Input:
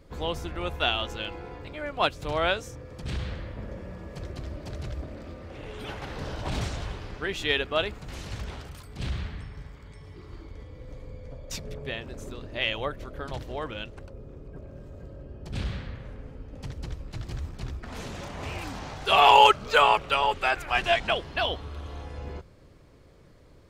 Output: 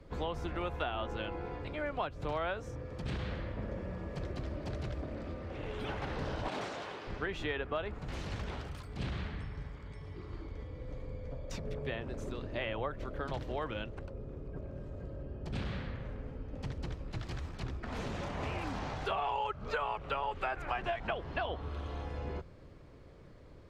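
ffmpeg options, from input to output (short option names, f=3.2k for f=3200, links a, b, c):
-filter_complex "[0:a]asettb=1/sr,asplit=3[a][b][c];[a]atrim=end=6.474[d];[b]atrim=start=6.47:end=7.07,asetpts=PTS-STARTPTS,afade=t=in:d=0.004:c=qsin,afade=t=out:st=0.596:d=0.004:c=qsin,highpass=340[e];[c]atrim=start=7.066[f];[d][e]acrossfade=d=0.004:c1=hsin:c2=qsin[g];[g][f]acrossfade=d=0.004:c1=qsin:c2=hsin,asettb=1/sr,asplit=3[h][i][j];[h]atrim=end=17.194[k];[i]atrim=start=17.19:end=17.63,asetpts=PTS-STARTPTS,afade=t=in:d=0.004:c=qsin,afade=t=out:st=0.436:d=0.004:c=qsin,tiltshelf=f=740:g=-3.5[l];[j]atrim=start=17.626[m];[k][l]acrossfade=d=0.004:c1=hsin:c2=qsin[n];[n][m]acrossfade=d=0.004:c1=qsin:c2=hsin,acrossover=split=140|700|1800[o][p][q][r];[o]acompressor=threshold=-38dB:ratio=4[s];[p]acompressor=threshold=-35dB:ratio=4[t];[q]acompressor=threshold=-30dB:ratio=4[u];[r]acompressor=threshold=-43dB:ratio=4[v];[s][t][u][v]amix=inputs=4:normalize=0,aemphasis=mode=reproduction:type=50kf,acompressor=threshold=-31dB:ratio=6"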